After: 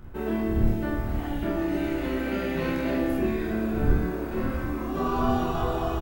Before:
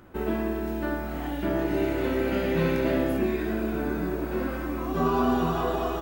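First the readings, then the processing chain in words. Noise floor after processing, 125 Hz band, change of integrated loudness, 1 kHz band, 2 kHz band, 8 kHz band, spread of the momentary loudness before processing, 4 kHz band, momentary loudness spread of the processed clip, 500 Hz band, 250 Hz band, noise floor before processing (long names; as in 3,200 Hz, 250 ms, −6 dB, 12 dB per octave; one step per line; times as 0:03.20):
−32 dBFS, +3.0 dB, −0.5 dB, −1.0 dB, −1.0 dB, can't be measured, 6 LU, −1.0 dB, 4 LU, −2.5 dB, 0.0 dB, −32 dBFS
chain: wind on the microphone 83 Hz −29 dBFS
ambience of single reflections 27 ms −6 dB, 45 ms −5.5 dB
level −3 dB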